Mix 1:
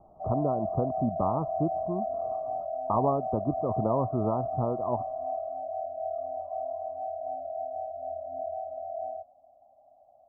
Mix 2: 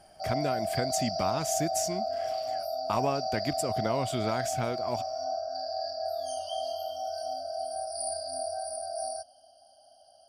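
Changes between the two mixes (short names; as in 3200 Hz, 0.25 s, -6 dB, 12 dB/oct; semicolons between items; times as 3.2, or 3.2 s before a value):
speech -3.5 dB; master: remove steep low-pass 1200 Hz 96 dB/oct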